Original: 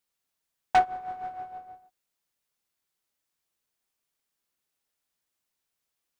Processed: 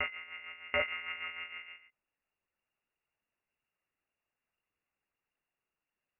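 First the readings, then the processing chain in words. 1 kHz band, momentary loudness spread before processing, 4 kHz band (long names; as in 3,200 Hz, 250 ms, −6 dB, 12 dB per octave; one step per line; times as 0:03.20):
−18.5 dB, 17 LU, +5.0 dB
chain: backwards echo 760 ms −7 dB
tube saturation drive 26 dB, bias 0.25
one-pitch LPC vocoder at 8 kHz 170 Hz
voice inversion scrambler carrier 2,800 Hz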